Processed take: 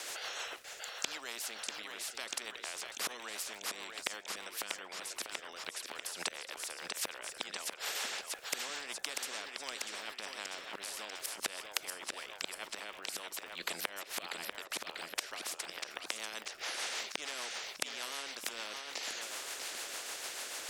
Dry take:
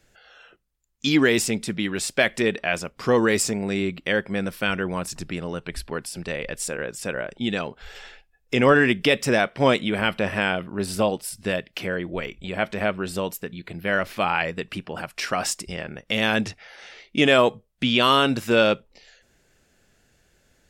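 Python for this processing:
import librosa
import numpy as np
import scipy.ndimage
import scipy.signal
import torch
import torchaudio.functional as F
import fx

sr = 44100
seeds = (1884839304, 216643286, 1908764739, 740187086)

y = fx.high_shelf(x, sr, hz=2500.0, db=-5.5, at=(13.37, 15.46))
y = fx.gate_flip(y, sr, shuts_db=-23.0, range_db=-33)
y = scipy.signal.sosfilt(scipy.signal.butter(4, 620.0, 'highpass', fs=sr, output='sos'), y)
y = fx.high_shelf(y, sr, hz=12000.0, db=-12.0)
y = fx.dmg_crackle(y, sr, seeds[0], per_s=69.0, level_db=-72.0)
y = fx.echo_feedback(y, sr, ms=642, feedback_pct=46, wet_db=-12.0)
y = fx.rotary(y, sr, hz=6.7)
y = fx.spectral_comp(y, sr, ratio=4.0)
y = y * 10.0 ** (12.0 / 20.0)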